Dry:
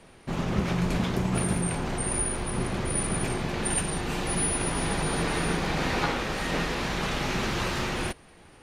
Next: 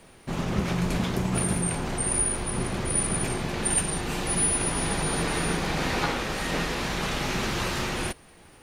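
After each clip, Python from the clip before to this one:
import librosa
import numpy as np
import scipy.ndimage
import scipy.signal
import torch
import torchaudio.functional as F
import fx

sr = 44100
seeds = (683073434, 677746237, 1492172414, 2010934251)

y = fx.high_shelf(x, sr, hz=6500.0, db=6.0)
y = fx.quant_dither(y, sr, seeds[0], bits=12, dither='triangular')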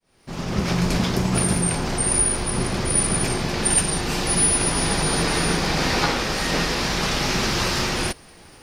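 y = fx.fade_in_head(x, sr, length_s=0.73)
y = fx.peak_eq(y, sr, hz=5100.0, db=8.0, octaves=0.53)
y = y * 10.0 ** (5.0 / 20.0)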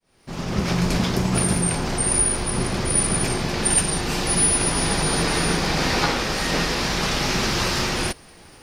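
y = x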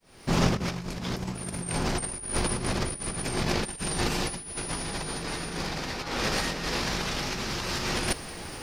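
y = fx.over_compress(x, sr, threshold_db=-28.0, ratio=-0.5)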